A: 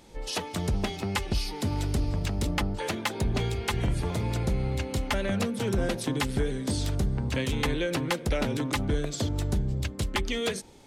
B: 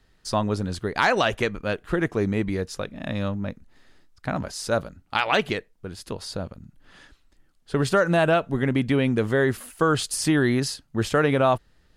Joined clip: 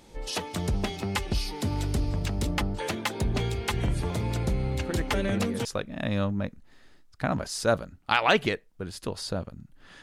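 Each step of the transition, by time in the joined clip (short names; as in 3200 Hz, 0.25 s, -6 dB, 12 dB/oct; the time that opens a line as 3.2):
A
4.76 add B from 1.8 s 0.89 s -10.5 dB
5.65 switch to B from 2.69 s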